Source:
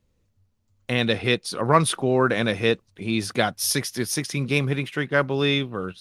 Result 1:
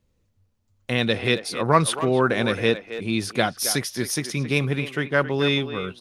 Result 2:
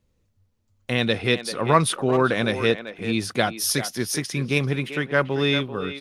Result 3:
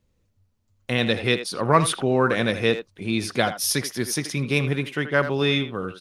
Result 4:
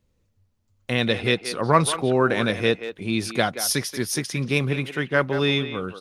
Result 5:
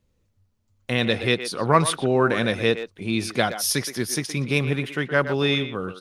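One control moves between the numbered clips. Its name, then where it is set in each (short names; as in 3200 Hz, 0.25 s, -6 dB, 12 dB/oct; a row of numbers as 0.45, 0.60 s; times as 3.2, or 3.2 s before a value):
speakerphone echo, time: 270, 390, 80, 180, 120 ms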